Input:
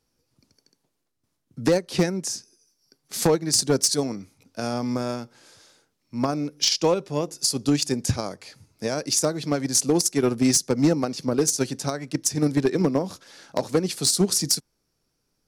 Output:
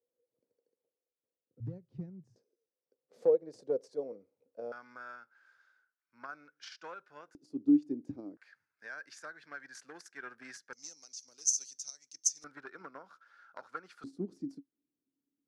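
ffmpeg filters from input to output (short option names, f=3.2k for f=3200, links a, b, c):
-af "asetnsamples=n=441:p=0,asendcmd='1.6 bandpass f 120;2.36 bandpass f 500;4.72 bandpass f 1500;7.35 bandpass f 300;8.37 bandpass f 1600;10.73 bandpass f 6200;12.44 bandpass f 1400;14.04 bandpass f 280',bandpass=f=490:t=q:w=10:csg=0"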